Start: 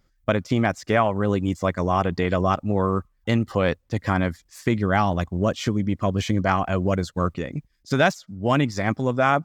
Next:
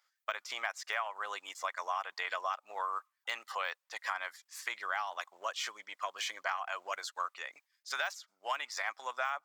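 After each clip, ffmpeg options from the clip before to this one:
-af "deesser=0.7,highpass=f=890:w=0.5412,highpass=f=890:w=1.3066,acompressor=threshold=0.0355:ratio=6,volume=0.75"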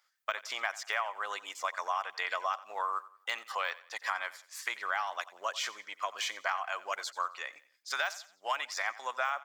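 -af "aecho=1:1:89|178|267:0.126|0.0478|0.0182,volume=1.33"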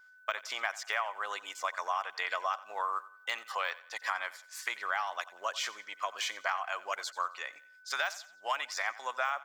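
-af "aeval=exprs='val(0)+0.00158*sin(2*PI*1500*n/s)':c=same"

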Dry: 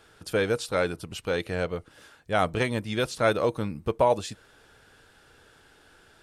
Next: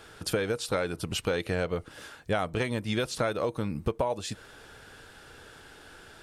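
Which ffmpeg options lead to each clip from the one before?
-af "acompressor=threshold=0.0282:ratio=16,volume=2.11"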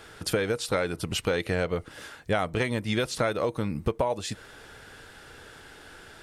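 -af "equalizer=f=2000:w=6.5:g=4,volume=1.26"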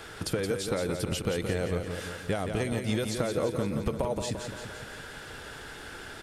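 -filter_complex "[0:a]acrossover=split=620|6100[s0][s1][s2];[s0]acompressor=threshold=0.0251:ratio=4[s3];[s1]acompressor=threshold=0.00708:ratio=4[s4];[s2]acompressor=threshold=0.00562:ratio=4[s5];[s3][s4][s5]amix=inputs=3:normalize=0,asplit=2[s6][s7];[s7]aecho=0:1:172|344|516|688|860|1032|1204:0.473|0.27|0.154|0.0876|0.0499|0.0285|0.0162[s8];[s6][s8]amix=inputs=2:normalize=0,volume=1.58"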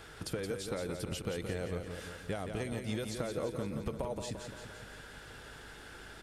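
-af "aeval=exprs='val(0)+0.00316*(sin(2*PI*50*n/s)+sin(2*PI*2*50*n/s)/2+sin(2*PI*3*50*n/s)/3+sin(2*PI*4*50*n/s)/4+sin(2*PI*5*50*n/s)/5)':c=same,volume=0.422"

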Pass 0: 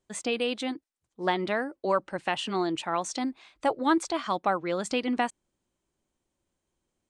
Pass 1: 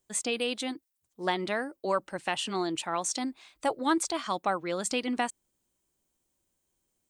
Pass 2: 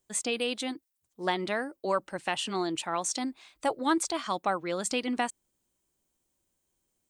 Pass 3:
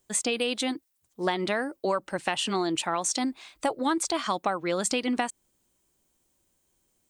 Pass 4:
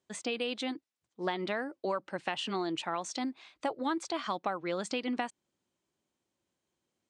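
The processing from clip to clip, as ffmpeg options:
-af "aemphasis=mode=production:type=50fm,volume=0.75"
-af anull
-af "acompressor=threshold=0.0316:ratio=4,volume=2.11"
-af "highpass=110,lowpass=4700,volume=0.501"

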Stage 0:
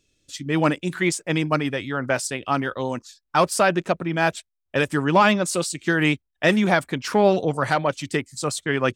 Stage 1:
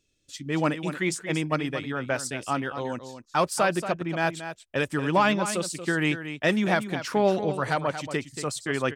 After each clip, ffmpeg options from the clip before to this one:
-af "aecho=1:1:231:0.299,volume=0.562"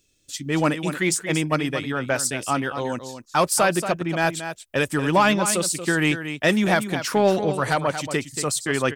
-filter_complex "[0:a]highshelf=f=7900:g=11.5,asplit=2[s0][s1];[s1]asoftclip=type=tanh:threshold=0.0841,volume=0.355[s2];[s0][s2]amix=inputs=2:normalize=0,volume=1.26"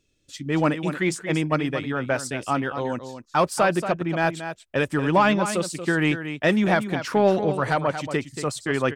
-af "lowpass=f=2400:p=1"

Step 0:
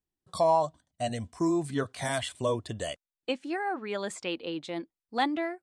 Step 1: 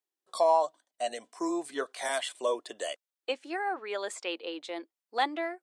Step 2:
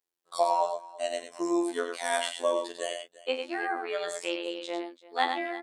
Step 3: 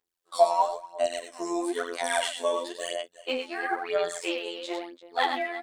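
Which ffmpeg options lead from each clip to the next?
-af "highpass=f=370:w=0.5412,highpass=f=370:w=1.3066"
-af "aecho=1:1:41|97|117|341:0.316|0.473|0.237|0.112,afftfilt=real='hypot(re,im)*cos(PI*b)':imag='0':win_size=2048:overlap=0.75,volume=1.58"
-af "aphaser=in_gain=1:out_gain=1:delay=4.7:decay=0.63:speed=1:type=sinusoidal"

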